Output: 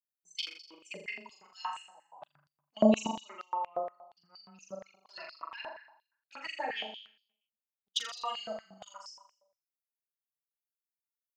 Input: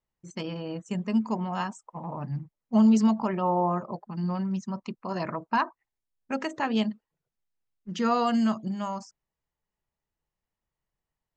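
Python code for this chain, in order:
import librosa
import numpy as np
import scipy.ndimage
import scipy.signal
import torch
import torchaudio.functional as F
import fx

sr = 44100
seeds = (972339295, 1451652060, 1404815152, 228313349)

y = fx.bin_expand(x, sr, power=2.0)
y = fx.high_shelf(y, sr, hz=6400.0, db=7.0)
y = fx.level_steps(y, sr, step_db=21)
y = fx.env_flanger(y, sr, rest_ms=5.2, full_db=-38.5)
y = fx.room_flutter(y, sr, wall_m=7.1, rt60_s=0.69)
y = fx.filter_held_highpass(y, sr, hz=8.5, low_hz=570.0, high_hz=4700.0)
y = y * librosa.db_to_amplitude(8.0)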